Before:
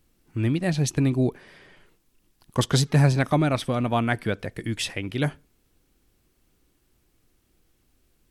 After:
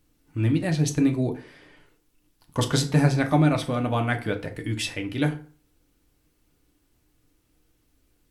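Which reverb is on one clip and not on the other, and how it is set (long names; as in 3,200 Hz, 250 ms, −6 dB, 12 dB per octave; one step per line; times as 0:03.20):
feedback delay network reverb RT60 0.42 s, low-frequency decay 1.05×, high-frequency decay 0.7×, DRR 4 dB
level −2 dB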